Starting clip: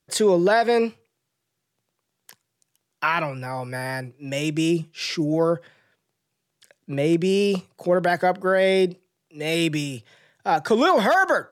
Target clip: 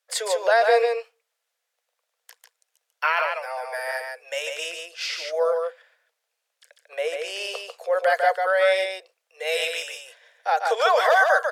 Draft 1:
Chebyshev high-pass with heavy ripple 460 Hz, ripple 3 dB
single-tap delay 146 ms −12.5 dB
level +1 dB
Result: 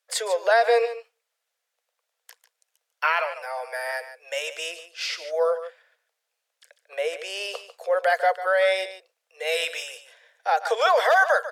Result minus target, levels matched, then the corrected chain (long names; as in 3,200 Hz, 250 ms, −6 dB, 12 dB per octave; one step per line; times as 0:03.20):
echo-to-direct −8 dB
Chebyshev high-pass with heavy ripple 460 Hz, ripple 3 dB
single-tap delay 146 ms −4.5 dB
level +1 dB